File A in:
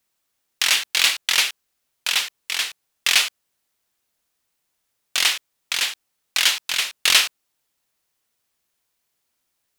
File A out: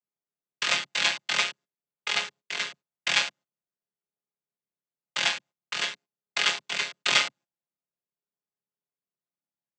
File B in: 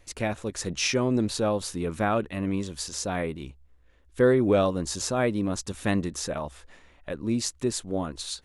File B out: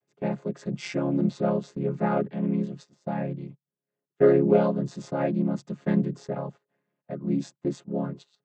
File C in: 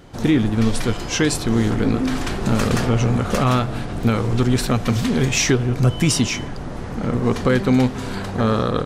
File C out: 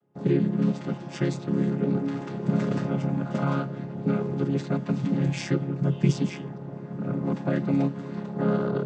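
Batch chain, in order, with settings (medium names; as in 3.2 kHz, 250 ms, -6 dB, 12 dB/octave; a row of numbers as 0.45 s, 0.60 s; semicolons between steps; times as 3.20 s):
vocoder on a held chord major triad, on C#3; gate -43 dBFS, range -17 dB; peaking EQ 180 Hz -3.5 dB 0.65 oct; tape noise reduction on one side only decoder only; normalise loudness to -27 LUFS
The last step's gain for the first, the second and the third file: -5.5 dB, +3.0 dB, -4.0 dB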